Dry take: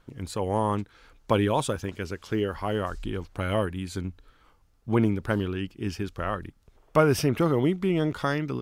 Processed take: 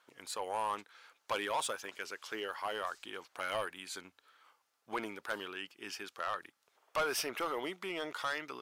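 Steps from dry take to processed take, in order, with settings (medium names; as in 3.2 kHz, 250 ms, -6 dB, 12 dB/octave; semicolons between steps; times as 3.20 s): high-pass 790 Hz 12 dB/octave; saturation -25.5 dBFS, distortion -10 dB; trim -1.5 dB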